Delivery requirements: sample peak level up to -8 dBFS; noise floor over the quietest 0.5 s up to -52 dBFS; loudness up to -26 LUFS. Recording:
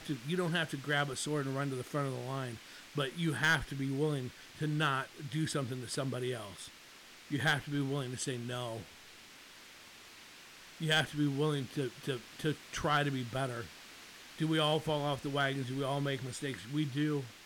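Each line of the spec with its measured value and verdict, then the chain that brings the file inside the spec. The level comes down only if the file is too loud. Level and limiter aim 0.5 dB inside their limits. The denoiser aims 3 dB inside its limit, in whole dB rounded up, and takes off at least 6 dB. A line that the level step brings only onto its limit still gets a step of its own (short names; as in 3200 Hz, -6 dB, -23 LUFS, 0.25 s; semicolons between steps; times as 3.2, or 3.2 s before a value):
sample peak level -20.5 dBFS: OK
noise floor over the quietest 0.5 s -55 dBFS: OK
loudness -35.0 LUFS: OK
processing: none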